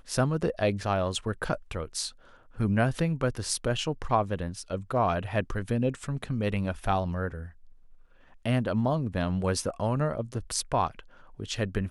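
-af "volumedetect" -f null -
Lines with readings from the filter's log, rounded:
mean_volume: -29.3 dB
max_volume: -11.3 dB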